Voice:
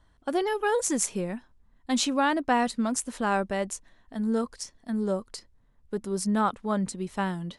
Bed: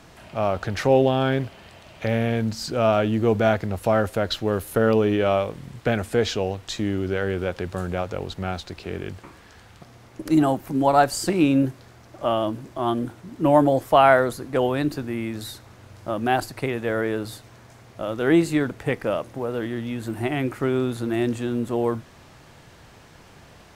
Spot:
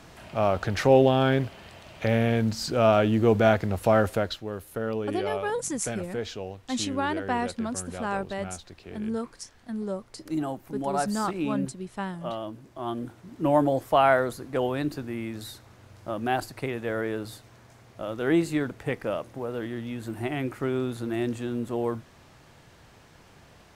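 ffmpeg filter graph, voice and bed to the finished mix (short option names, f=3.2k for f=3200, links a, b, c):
-filter_complex "[0:a]adelay=4800,volume=-4dB[a];[1:a]volume=5.5dB,afade=t=out:st=4.13:d=0.25:silence=0.298538,afade=t=in:st=12.6:d=0.8:silence=0.501187[b];[a][b]amix=inputs=2:normalize=0"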